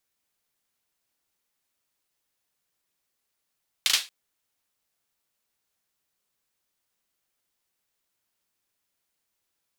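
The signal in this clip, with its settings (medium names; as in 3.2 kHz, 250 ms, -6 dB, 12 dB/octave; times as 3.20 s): hand clap length 0.23 s, bursts 3, apart 37 ms, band 3.5 kHz, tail 0.26 s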